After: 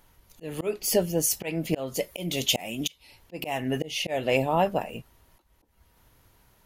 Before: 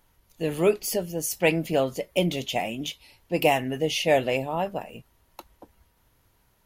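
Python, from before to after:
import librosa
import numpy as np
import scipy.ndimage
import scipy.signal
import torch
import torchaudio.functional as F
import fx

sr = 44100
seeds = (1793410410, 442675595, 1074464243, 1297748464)

y = fx.high_shelf(x, sr, hz=4200.0, db=10.0, at=(1.94, 2.89))
y = fx.auto_swell(y, sr, attack_ms=343.0)
y = y * 10.0 ** (4.5 / 20.0)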